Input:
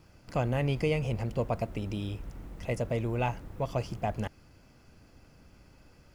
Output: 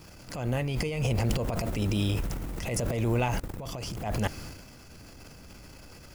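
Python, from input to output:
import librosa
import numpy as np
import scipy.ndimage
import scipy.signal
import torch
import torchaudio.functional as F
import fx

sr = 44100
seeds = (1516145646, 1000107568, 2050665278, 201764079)

y = fx.level_steps(x, sr, step_db=22, at=(3.33, 3.97))
y = fx.high_shelf(y, sr, hz=4400.0, db=9.5)
y = fx.over_compress(y, sr, threshold_db=-31.0, ratio=-0.5)
y = fx.transient(y, sr, attack_db=-7, sustain_db=9)
y = y * librosa.db_to_amplitude(5.0)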